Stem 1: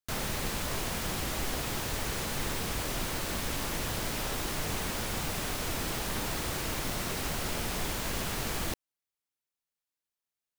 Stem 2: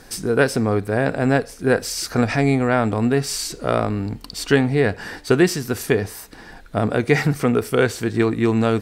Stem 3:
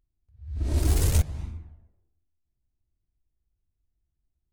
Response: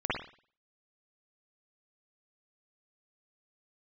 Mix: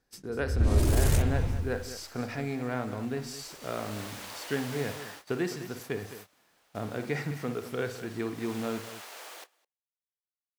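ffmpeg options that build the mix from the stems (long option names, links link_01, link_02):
-filter_complex "[0:a]highpass=frequency=480:width=0.5412,highpass=frequency=480:width=1.3066,highshelf=frequency=8300:gain=-4,adelay=700,volume=0.5dB,afade=type=in:start_time=3.32:duration=0.69:silence=0.223872,afade=type=out:start_time=4.9:duration=0.34:silence=0.316228,afade=type=in:start_time=8.33:duration=0.2:silence=0.421697,asplit=3[link_01][link_02][link_03];[link_02]volume=-19dB[link_04];[link_03]volume=-9.5dB[link_05];[1:a]highpass=86,equalizer=frequency=8900:width=7.5:gain=-10.5,volume=-16.5dB,asplit=3[link_06][link_07][link_08];[link_07]volume=-17.5dB[link_09];[link_08]volume=-11.5dB[link_10];[2:a]alimiter=limit=-23dB:level=0:latency=1:release=24,volume=1.5dB,asplit=2[link_11][link_12];[link_12]volume=-6dB[link_13];[3:a]atrim=start_sample=2205[link_14];[link_04][link_09][link_13]amix=inputs=3:normalize=0[link_15];[link_15][link_14]afir=irnorm=-1:irlink=0[link_16];[link_05][link_10]amix=inputs=2:normalize=0,aecho=0:1:208:1[link_17];[link_01][link_06][link_11][link_16][link_17]amix=inputs=5:normalize=0,agate=range=-16dB:threshold=-46dB:ratio=16:detection=peak"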